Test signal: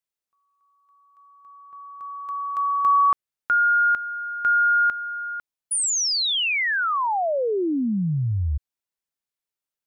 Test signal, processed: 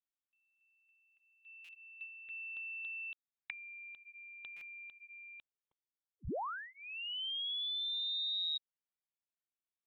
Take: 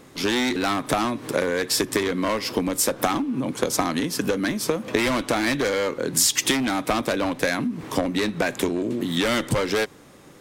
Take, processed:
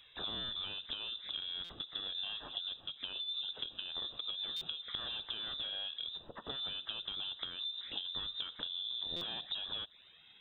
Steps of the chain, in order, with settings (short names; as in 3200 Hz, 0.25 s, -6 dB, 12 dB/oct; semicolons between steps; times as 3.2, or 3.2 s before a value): compressor 10:1, threshold -28 dBFS; envelope flanger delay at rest 2.6 ms, full sweep at -30 dBFS; inverted band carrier 3800 Hz; stuck buffer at 1.64/4.56/9.16, samples 256, times 8; gain -8 dB